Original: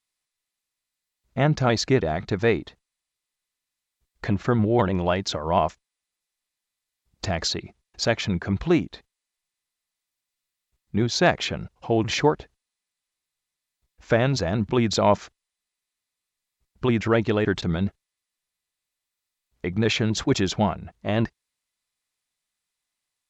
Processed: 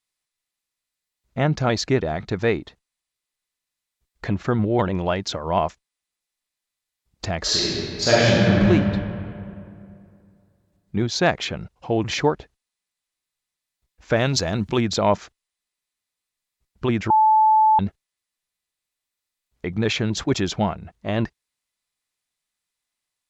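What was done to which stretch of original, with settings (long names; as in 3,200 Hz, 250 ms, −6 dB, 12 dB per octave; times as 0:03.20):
0:07.42–0:08.67: thrown reverb, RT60 2.5 s, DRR −8.5 dB
0:14.16–0:14.81: high-shelf EQ 3,500 Hz +11.5 dB
0:17.10–0:17.79: beep over 870 Hz −12 dBFS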